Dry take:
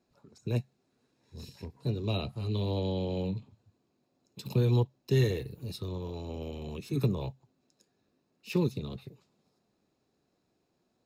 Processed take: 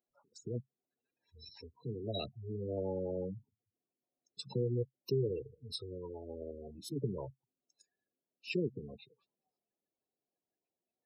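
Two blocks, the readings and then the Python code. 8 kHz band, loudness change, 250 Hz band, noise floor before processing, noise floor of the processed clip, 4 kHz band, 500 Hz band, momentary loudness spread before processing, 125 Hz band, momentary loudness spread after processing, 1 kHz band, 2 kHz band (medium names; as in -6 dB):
-5.0 dB, -7.5 dB, -8.0 dB, -77 dBFS, under -85 dBFS, -4.5 dB, -3.5 dB, 15 LU, -11.0 dB, 16 LU, -9.0 dB, -6.5 dB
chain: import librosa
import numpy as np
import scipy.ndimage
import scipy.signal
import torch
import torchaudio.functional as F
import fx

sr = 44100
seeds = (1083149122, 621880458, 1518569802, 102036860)

y = fx.spec_gate(x, sr, threshold_db=-15, keep='strong')
y = F.preemphasis(torch.from_numpy(y), 0.9).numpy()
y = fx.noise_reduce_blind(y, sr, reduce_db=15)
y = fx.spec_box(y, sr, start_s=6.71, length_s=0.22, low_hz=350.0, high_hz=3000.0, gain_db=-27)
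y = fx.peak_eq(y, sr, hz=660.0, db=10.5, octaves=2.9)
y = y * librosa.db_to_amplitude(7.0)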